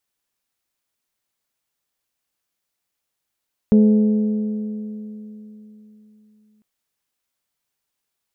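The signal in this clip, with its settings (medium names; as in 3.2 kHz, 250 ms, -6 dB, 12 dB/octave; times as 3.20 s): metal hit bell, length 2.90 s, lowest mode 213 Hz, modes 5, decay 3.63 s, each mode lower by 10 dB, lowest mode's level -8.5 dB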